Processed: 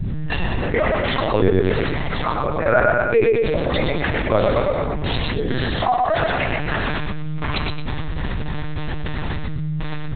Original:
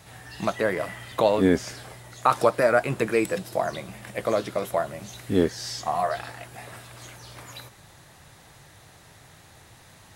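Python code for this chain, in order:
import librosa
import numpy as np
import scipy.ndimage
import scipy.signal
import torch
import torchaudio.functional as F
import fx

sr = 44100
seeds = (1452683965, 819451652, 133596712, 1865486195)

p1 = fx.hum_notches(x, sr, base_hz=50, count=8)
p2 = fx.level_steps(p1, sr, step_db=21)
p3 = p1 + (p2 * librosa.db_to_amplitude(0.5))
p4 = fx.step_gate(p3, sr, bpm=101, pattern='..x..x.x.x.x.xx.', floor_db=-24.0, edge_ms=4.5)
p5 = fx.add_hum(p4, sr, base_hz=50, snr_db=15)
p6 = p5 + fx.echo_feedback(p5, sr, ms=114, feedback_pct=34, wet_db=-4, dry=0)
p7 = fx.rev_fdn(p6, sr, rt60_s=0.39, lf_ratio=1.35, hf_ratio=0.8, size_ms=39.0, drr_db=5.5)
p8 = fx.lpc_vocoder(p7, sr, seeds[0], excitation='pitch_kept', order=10)
p9 = fx.env_flatten(p8, sr, amount_pct=70)
y = p9 * librosa.db_to_amplitude(-4.0)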